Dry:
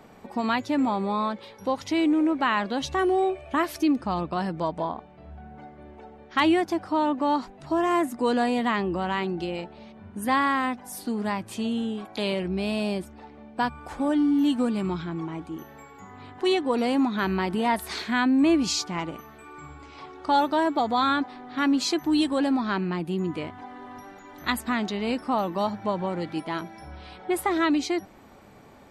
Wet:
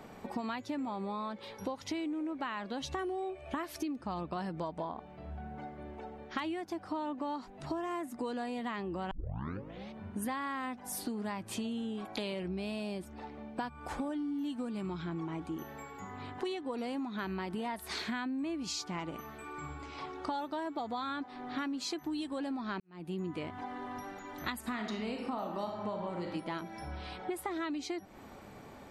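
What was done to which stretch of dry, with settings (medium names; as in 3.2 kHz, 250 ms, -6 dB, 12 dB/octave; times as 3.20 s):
9.11 s: tape start 0.79 s
22.80–23.28 s: fade in quadratic
24.59–26.32 s: reverb throw, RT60 0.87 s, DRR 2.5 dB
whole clip: compression 12:1, threshold -34 dBFS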